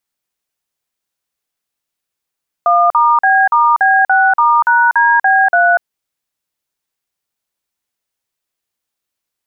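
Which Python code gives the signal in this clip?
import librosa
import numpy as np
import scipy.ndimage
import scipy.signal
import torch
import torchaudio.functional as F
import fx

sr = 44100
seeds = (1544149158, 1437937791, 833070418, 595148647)

y = fx.dtmf(sr, digits='1*B*B6*#DB3', tone_ms=242, gap_ms=45, level_db=-10.0)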